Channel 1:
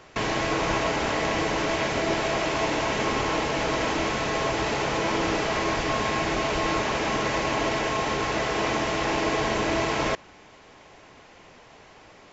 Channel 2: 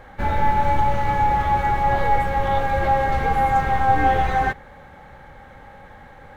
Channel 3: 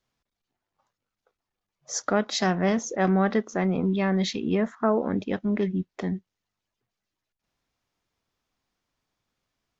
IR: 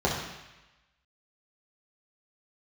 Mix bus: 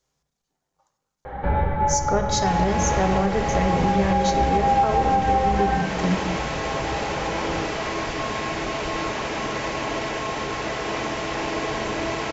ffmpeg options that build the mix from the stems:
-filter_complex "[0:a]adelay=2300,volume=0.841[s0];[1:a]lowpass=f=3200:w=0.5412,lowpass=f=3200:w=1.3066,acompressor=threshold=0.0282:ratio=2.5,adelay=1250,volume=1.41,asplit=2[s1][s2];[s2]volume=0.299[s3];[2:a]equalizer=f=6700:t=o:w=0.72:g=9.5,volume=1.06,asplit=2[s4][s5];[s5]volume=0.15[s6];[3:a]atrim=start_sample=2205[s7];[s3][s6]amix=inputs=2:normalize=0[s8];[s8][s7]afir=irnorm=-1:irlink=0[s9];[s0][s1][s4][s9]amix=inputs=4:normalize=0,alimiter=limit=0.299:level=0:latency=1:release=336"

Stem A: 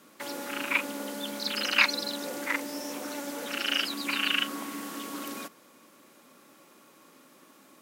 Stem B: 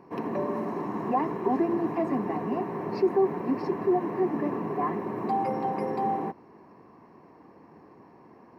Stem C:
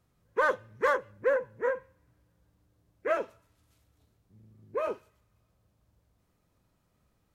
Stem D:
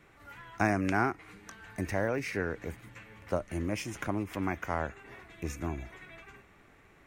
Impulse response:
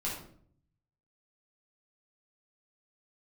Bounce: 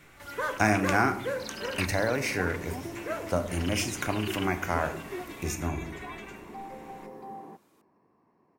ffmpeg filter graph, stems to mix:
-filter_complex "[0:a]volume=0.266[s0];[1:a]adelay=1250,volume=0.188[s1];[2:a]aemphasis=mode=production:type=75kf,volume=0.355,asplit=2[s2][s3];[s3]volume=0.316[s4];[3:a]highshelf=f=2900:g=9.5,volume=1.06,asplit=2[s5][s6];[s6]volume=0.376[s7];[4:a]atrim=start_sample=2205[s8];[s4][s7]amix=inputs=2:normalize=0[s9];[s9][s8]afir=irnorm=-1:irlink=0[s10];[s0][s1][s2][s5][s10]amix=inputs=5:normalize=0"

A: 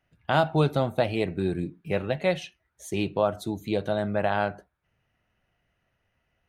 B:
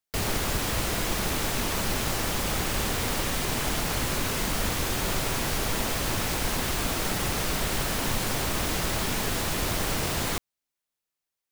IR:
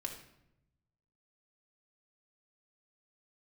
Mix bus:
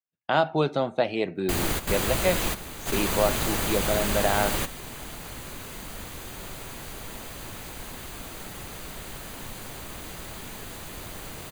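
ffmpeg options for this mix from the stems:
-filter_complex "[0:a]highpass=210,agate=range=0.0224:threshold=0.00251:ratio=3:detection=peak,lowpass=f=7000:w=0.5412,lowpass=f=7000:w=1.3066,volume=1.06,asplit=2[s0][s1];[1:a]bandreject=f=5400:w=5.9,adelay=1350,volume=1.06[s2];[s1]apad=whole_len=567281[s3];[s2][s3]sidechaingate=range=0.251:threshold=0.00562:ratio=16:detection=peak[s4];[s0][s4]amix=inputs=2:normalize=0,highshelf=f=11000:g=3"

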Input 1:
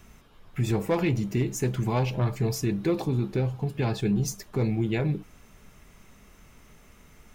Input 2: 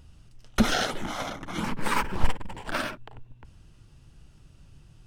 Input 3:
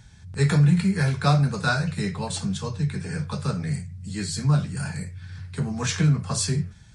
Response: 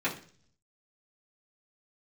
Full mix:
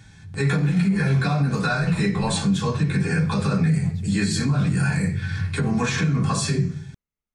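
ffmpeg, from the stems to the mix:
-filter_complex "[0:a]agate=range=0.0562:threshold=0.00794:ratio=16:detection=peak,volume=0.2[s0];[1:a]lowpass=10000,alimiter=limit=0.178:level=0:latency=1:release=175,volume=0.168[s1];[2:a]dynaudnorm=f=590:g=5:m=3.76,alimiter=limit=0.211:level=0:latency=1:release=13,volume=0.794,asplit=2[s2][s3];[s3]volume=0.708[s4];[s0][s2]amix=inputs=2:normalize=0,alimiter=level_in=1.06:limit=0.0631:level=0:latency=1,volume=0.944,volume=1[s5];[3:a]atrim=start_sample=2205[s6];[s4][s6]afir=irnorm=-1:irlink=0[s7];[s1][s5][s7]amix=inputs=3:normalize=0,alimiter=limit=0.224:level=0:latency=1:release=136"

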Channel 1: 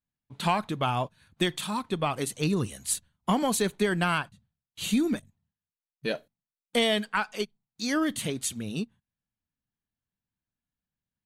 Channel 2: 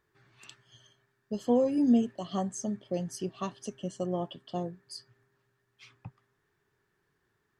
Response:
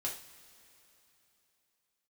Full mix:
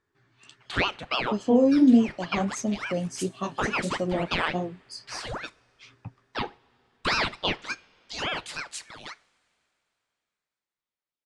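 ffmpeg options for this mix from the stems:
-filter_complex "[0:a]highpass=f=420:w=0.5412,highpass=f=420:w=1.3066,highshelf=f=6700:g=-11.5,aeval=exprs='val(0)*sin(2*PI*1100*n/s+1100*0.85/3.5*sin(2*PI*3.5*n/s))':c=same,adelay=300,volume=1.41,asplit=2[s0][s1];[s1]volume=0.168[s2];[1:a]flanger=delay=9:depth=9.8:regen=-38:speed=1.5:shape=sinusoidal,equalizer=f=270:t=o:w=0.21:g=7.5,dynaudnorm=f=120:g=11:m=2.11,volume=1.12,asplit=2[s3][s4];[s4]apad=whole_len=509732[s5];[s0][s5]sidechaincompress=threshold=0.0224:ratio=8:attack=16:release=113[s6];[2:a]atrim=start_sample=2205[s7];[s2][s7]afir=irnorm=-1:irlink=0[s8];[s6][s3][s8]amix=inputs=3:normalize=0,lowpass=f=8800:w=0.5412,lowpass=f=8800:w=1.3066"

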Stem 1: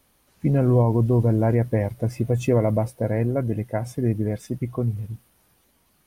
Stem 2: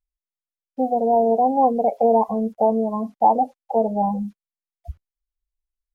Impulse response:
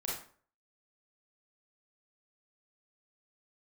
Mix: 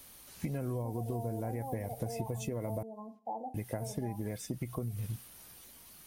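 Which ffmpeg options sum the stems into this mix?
-filter_complex "[0:a]highshelf=f=2800:g=11,acompressor=threshold=0.0398:ratio=6,volume=1.33,asplit=3[s0][s1][s2];[s0]atrim=end=2.83,asetpts=PTS-STARTPTS,afade=t=out:st=2.826:d=0.004:c=hsin[s3];[s1]atrim=start=2.83:end=3.54,asetpts=PTS-STARTPTS,volume=0[s4];[s2]atrim=start=3.54,asetpts=PTS-STARTPTS,afade=t=in:d=0.004:c=hsin[s5];[s3][s4][s5]concat=n=3:v=0:a=1[s6];[1:a]lowshelf=f=300:g=-6.5,adelay=50,volume=0.126,asplit=2[s7][s8];[s8]volume=0.178[s9];[2:a]atrim=start_sample=2205[s10];[s9][s10]afir=irnorm=-1:irlink=0[s11];[s6][s7][s11]amix=inputs=3:normalize=0,acrossover=split=670|7500[s12][s13][s14];[s12]acompressor=threshold=0.0178:ratio=4[s15];[s13]acompressor=threshold=0.00398:ratio=4[s16];[s14]acompressor=threshold=0.00251:ratio=4[s17];[s15][s16][s17]amix=inputs=3:normalize=0"

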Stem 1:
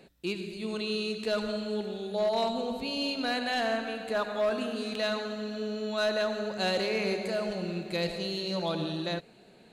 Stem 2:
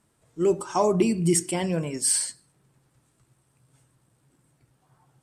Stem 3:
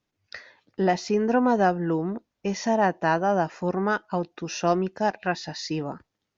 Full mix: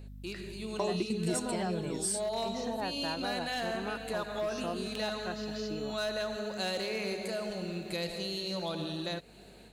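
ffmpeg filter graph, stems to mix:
-filter_complex "[0:a]highshelf=f=6900:g=11,dynaudnorm=f=460:g=3:m=2.82,aeval=exprs='val(0)+0.00251*(sin(2*PI*50*n/s)+sin(2*PI*2*50*n/s)/2+sin(2*PI*3*50*n/s)/3+sin(2*PI*4*50*n/s)/4+sin(2*PI*5*50*n/s)/5)':c=same,volume=0.447[s0];[1:a]volume=0.944[s1];[2:a]aeval=exprs='val(0)+0.01*(sin(2*PI*50*n/s)+sin(2*PI*2*50*n/s)/2+sin(2*PI*3*50*n/s)/3+sin(2*PI*4*50*n/s)/4+sin(2*PI*5*50*n/s)/5)':c=same,volume=0.447,asplit=2[s2][s3];[s3]apad=whole_len=230281[s4];[s1][s4]sidechaingate=range=0.0224:threshold=0.0141:ratio=16:detection=peak[s5];[s0][s5][s2]amix=inputs=3:normalize=0,acompressor=threshold=0.0126:ratio=2"

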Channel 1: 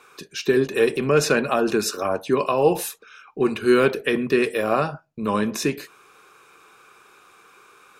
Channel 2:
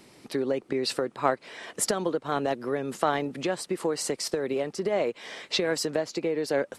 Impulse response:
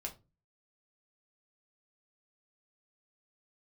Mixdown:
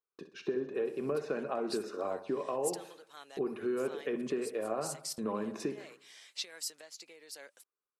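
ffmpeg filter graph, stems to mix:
-filter_complex "[0:a]bandpass=f=470:t=q:w=0.73:csg=0,agate=range=0.0112:threshold=0.00398:ratio=16:detection=peak,acompressor=threshold=0.0398:ratio=4,volume=0.596,asplit=3[s0][s1][s2];[s1]volume=0.251[s3];[1:a]aderivative,adelay=850,volume=0.531[s4];[s2]apad=whole_len=336710[s5];[s4][s5]sidechaincompress=threshold=0.02:ratio=8:attack=7.1:release=403[s6];[s3]aecho=0:1:64|128|192|256|320|384|448|512:1|0.52|0.27|0.141|0.0731|0.038|0.0198|0.0103[s7];[s0][s6][s7]amix=inputs=3:normalize=0"

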